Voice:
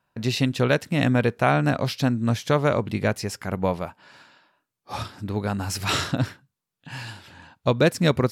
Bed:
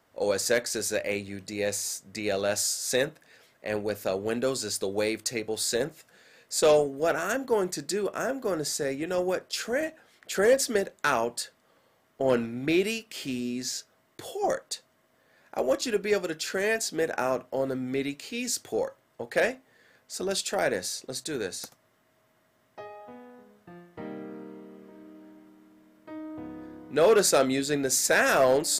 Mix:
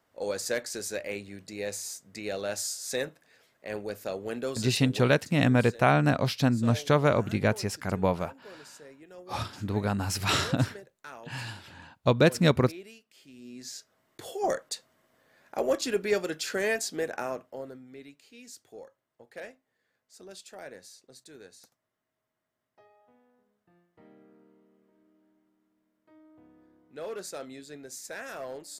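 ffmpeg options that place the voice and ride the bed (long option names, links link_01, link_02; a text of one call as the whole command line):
ffmpeg -i stem1.wav -i stem2.wav -filter_complex "[0:a]adelay=4400,volume=-2dB[link_01];[1:a]volume=13.5dB,afade=type=out:start_time=4.74:duration=0.41:silence=0.188365,afade=type=in:start_time=13.33:duration=1.07:silence=0.112202,afade=type=out:start_time=16.63:duration=1.21:silence=0.149624[link_02];[link_01][link_02]amix=inputs=2:normalize=0" out.wav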